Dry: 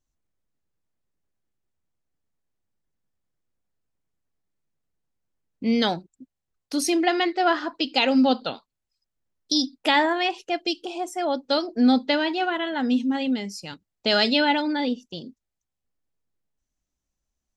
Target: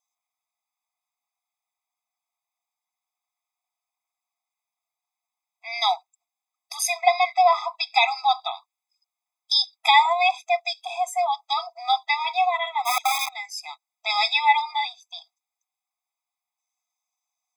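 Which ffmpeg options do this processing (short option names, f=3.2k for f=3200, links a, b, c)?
-filter_complex "[0:a]asplit=3[a][b][c];[a]afade=t=out:st=12.85:d=0.02[d];[b]aeval=exprs='(mod(11.2*val(0)+1,2)-1)/11.2':c=same,afade=t=in:st=12.85:d=0.02,afade=t=out:st=13.27:d=0.02[e];[c]afade=t=in:st=13.27:d=0.02[f];[d][e][f]amix=inputs=3:normalize=0,afftfilt=real='re*eq(mod(floor(b*sr/1024/660),2),1)':imag='im*eq(mod(floor(b*sr/1024/660),2),1)':win_size=1024:overlap=0.75,volume=6.5dB"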